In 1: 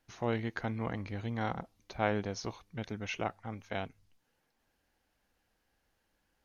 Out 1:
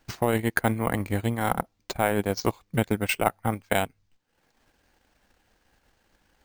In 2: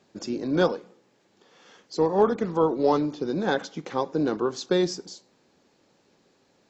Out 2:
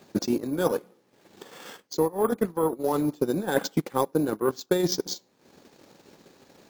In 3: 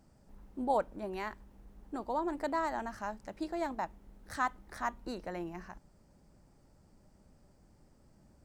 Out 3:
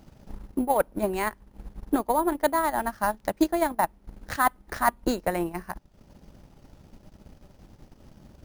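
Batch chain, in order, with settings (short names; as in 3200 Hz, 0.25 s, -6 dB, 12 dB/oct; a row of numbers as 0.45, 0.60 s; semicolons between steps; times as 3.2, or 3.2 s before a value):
reverse; compressor 12:1, threshold -33 dBFS; reverse; transient shaper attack +8 dB, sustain -12 dB; careless resampling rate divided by 4×, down none, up hold; match loudness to -27 LUFS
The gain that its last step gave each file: +11.0, +9.0, +11.0 dB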